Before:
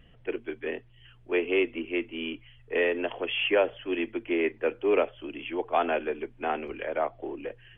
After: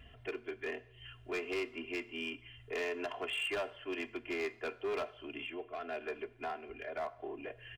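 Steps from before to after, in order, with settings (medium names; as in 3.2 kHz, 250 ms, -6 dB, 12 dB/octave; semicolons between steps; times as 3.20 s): high-pass 50 Hz 12 dB/octave; peaking EQ 320 Hz -12.5 dB 0.34 oct; comb 2.9 ms, depth 90%; dynamic bell 1.2 kHz, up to +7 dB, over -41 dBFS, Q 1.1; compression 2:1, threshold -44 dBFS, peak gain reduction 16.5 dB; saturation -26.5 dBFS, distortion -20 dB; 5.45–7.47 s: rotary cabinet horn 1 Hz; hard clipper -33.5 dBFS, distortion -17 dB; plate-style reverb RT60 0.81 s, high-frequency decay 0.95×, DRR 16 dB; trim +1 dB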